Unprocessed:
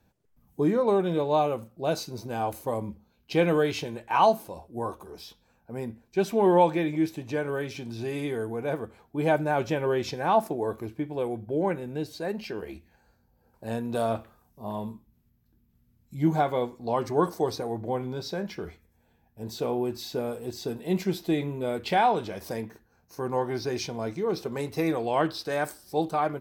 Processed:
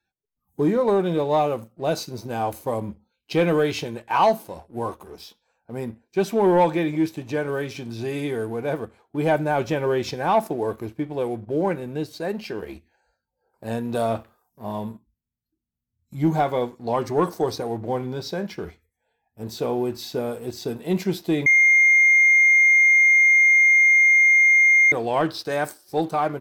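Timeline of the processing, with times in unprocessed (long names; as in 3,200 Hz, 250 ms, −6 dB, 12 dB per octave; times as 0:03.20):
0:21.46–0:24.92: beep over 2,120 Hz −14.5 dBFS
whole clip: noise reduction from a noise print of the clip's start 19 dB; leveller curve on the samples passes 1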